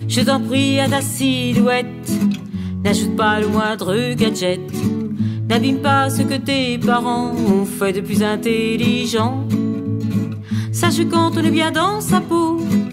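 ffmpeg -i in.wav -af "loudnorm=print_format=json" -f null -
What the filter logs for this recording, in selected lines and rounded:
"input_i" : "-17.6",
"input_tp" : "-5.2",
"input_lra" : "1.1",
"input_thresh" : "-27.6",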